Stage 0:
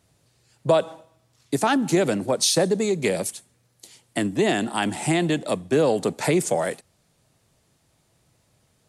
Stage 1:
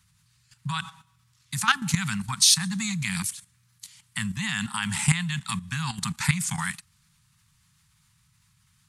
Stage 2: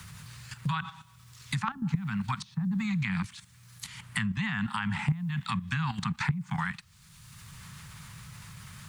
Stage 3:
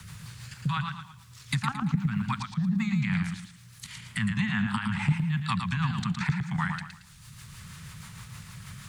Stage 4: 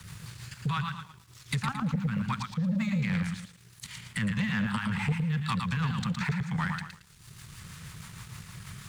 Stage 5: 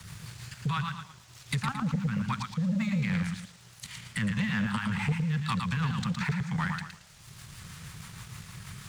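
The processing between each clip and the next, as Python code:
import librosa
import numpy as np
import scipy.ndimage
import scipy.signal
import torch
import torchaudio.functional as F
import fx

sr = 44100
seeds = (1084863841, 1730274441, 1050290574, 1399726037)

y1 = scipy.signal.sosfilt(scipy.signal.cheby2(4, 50, [310.0, 630.0], 'bandstop', fs=sr, output='sos'), x)
y1 = fx.level_steps(y1, sr, step_db=12)
y1 = y1 * librosa.db_to_amplitude(7.5)
y2 = fx.env_lowpass_down(y1, sr, base_hz=480.0, full_db=-20.5)
y2 = fx.quant_dither(y2, sr, seeds[0], bits=12, dither='none')
y2 = fx.band_squash(y2, sr, depth_pct=70)
y3 = fx.rotary(y2, sr, hz=6.3)
y3 = fx.echo_warbled(y3, sr, ms=113, feedback_pct=33, rate_hz=2.8, cents=74, wet_db=-6)
y3 = y3 * librosa.db_to_amplitude(3.5)
y4 = fx.leveller(y3, sr, passes=2)
y4 = y4 * librosa.db_to_amplitude(-7.5)
y5 = fx.dmg_noise_band(y4, sr, seeds[1], low_hz=510.0, high_hz=7500.0, level_db=-59.0)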